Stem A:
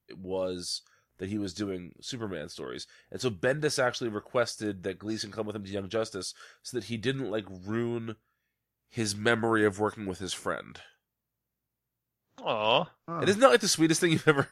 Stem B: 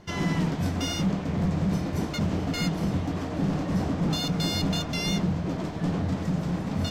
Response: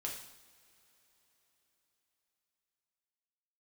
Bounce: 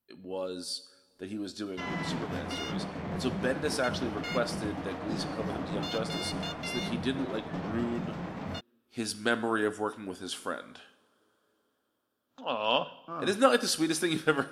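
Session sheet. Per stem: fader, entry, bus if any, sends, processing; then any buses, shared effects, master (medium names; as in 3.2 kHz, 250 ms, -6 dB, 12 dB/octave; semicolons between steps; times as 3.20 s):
-3.0 dB, 0.00 s, send -8 dB, graphic EQ with 31 bands 250 Hz +12 dB, 2 kHz -8 dB, 6.3 kHz -7 dB
-1.5 dB, 1.70 s, no send, tone controls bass -1 dB, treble -13 dB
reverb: on, pre-delay 3 ms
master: bass shelf 310 Hz -11.5 dB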